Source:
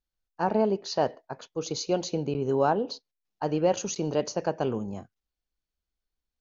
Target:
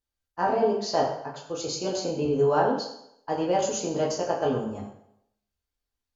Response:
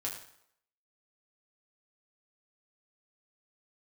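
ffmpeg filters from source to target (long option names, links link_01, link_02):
-filter_complex "[1:a]atrim=start_sample=2205,asetrate=38808,aresample=44100[link_01];[0:a][link_01]afir=irnorm=-1:irlink=0,asetrate=45938,aresample=44100"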